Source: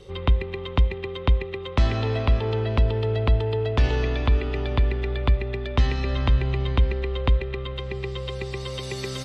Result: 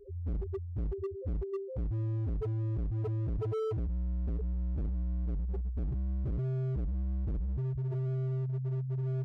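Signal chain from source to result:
on a send at −9 dB: convolution reverb, pre-delay 58 ms
on the sum: output level in coarse steps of 10 dB
dynamic equaliser 160 Hz, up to +5 dB, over −42 dBFS, Q 2.2
spectral peaks only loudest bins 1
in parallel at −1.5 dB: brickwall limiter −31.5 dBFS, peak gain reduction 10.5 dB
on the sum: gain into a clipping stage and back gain 33.5 dB
level +2.5 dB

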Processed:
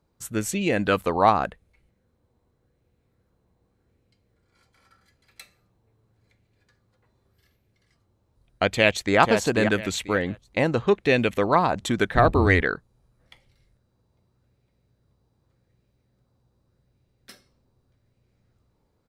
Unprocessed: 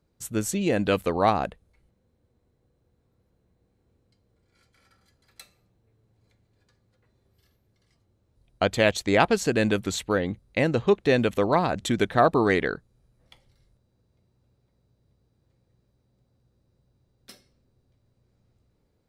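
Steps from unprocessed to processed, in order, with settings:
0:08.73–0:09.19: delay throw 490 ms, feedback 25%, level −6 dB
0:12.14–0:12.61: sub-octave generator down 2 octaves, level +3 dB
auto-filter bell 0.85 Hz 910–2,500 Hz +7 dB

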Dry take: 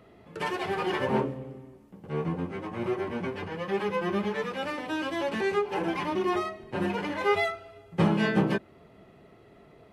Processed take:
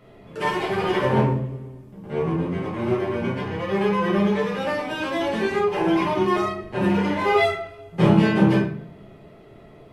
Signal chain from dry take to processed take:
rectangular room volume 67 cubic metres, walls mixed, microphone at 1.3 metres

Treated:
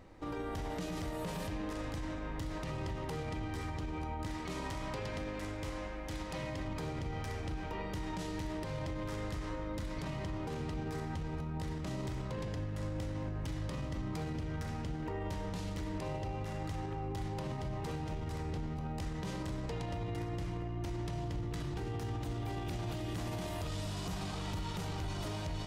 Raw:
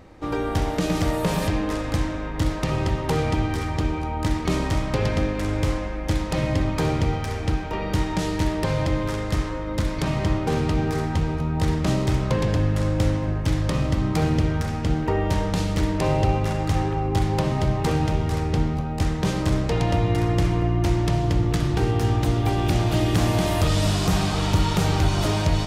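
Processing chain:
0:04.28–0:06.68: low-shelf EQ 350 Hz −6 dB
brickwall limiter −22 dBFS, peak gain reduction 11.5 dB
tuned comb filter 970 Hz, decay 0.29 s, mix 70%
level +1 dB

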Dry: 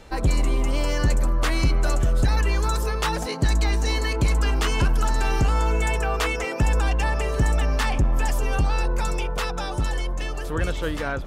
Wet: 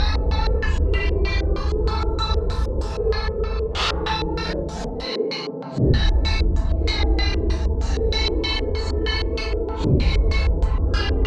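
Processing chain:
extreme stretch with random phases 5.1×, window 0.05 s, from 0:02.28
auto-filter low-pass square 3.2 Hz 470–4,100 Hz

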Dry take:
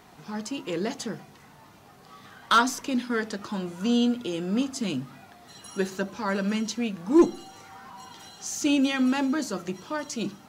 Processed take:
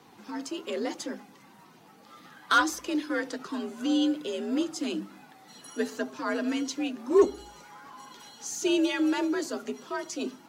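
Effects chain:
spectral magnitudes quantised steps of 15 dB
frequency shifter +57 Hz
level −2 dB

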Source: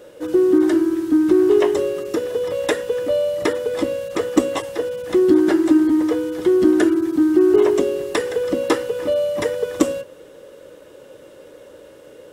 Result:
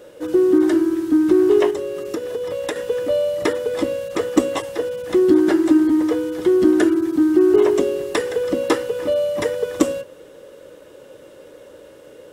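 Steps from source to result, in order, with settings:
0:01.70–0:02.76: downward compressor 6 to 1, threshold −22 dBFS, peak gain reduction 8 dB

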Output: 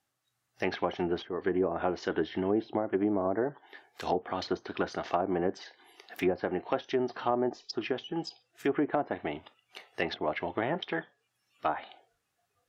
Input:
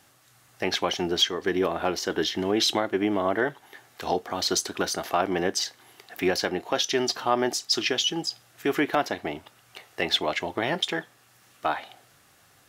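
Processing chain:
treble cut that deepens with the level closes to 750 Hz, closed at −20 dBFS
noise reduction from a noise print of the clip's start 19 dB
level −3 dB

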